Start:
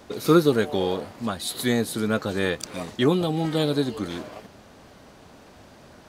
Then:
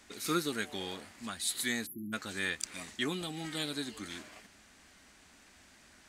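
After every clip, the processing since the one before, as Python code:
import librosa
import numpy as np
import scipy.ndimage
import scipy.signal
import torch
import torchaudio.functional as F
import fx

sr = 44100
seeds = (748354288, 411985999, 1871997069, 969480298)

y = fx.spec_erase(x, sr, start_s=1.86, length_s=0.27, low_hz=400.0, high_hz=11000.0)
y = fx.graphic_eq_10(y, sr, hz=(125, 500, 1000, 2000, 8000), db=(-12, -11, -4, 7, 10))
y = y * 10.0 ** (-9.0 / 20.0)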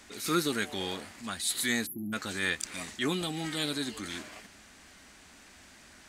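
y = fx.transient(x, sr, attack_db=-6, sustain_db=0)
y = y * 10.0 ** (5.5 / 20.0)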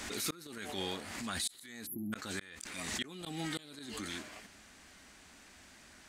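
y = fx.gate_flip(x, sr, shuts_db=-20.0, range_db=-36)
y = fx.pre_swell(y, sr, db_per_s=36.0)
y = y * 10.0 ** (-3.0 / 20.0)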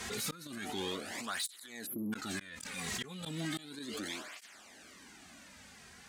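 y = fx.tube_stage(x, sr, drive_db=35.0, bias=0.3)
y = fx.flanger_cancel(y, sr, hz=0.34, depth_ms=3.5)
y = y * 10.0 ** (6.0 / 20.0)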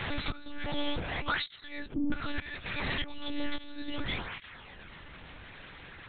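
y = fx.lpc_monotone(x, sr, seeds[0], pitch_hz=290.0, order=8)
y = y * 10.0 ** (8.5 / 20.0)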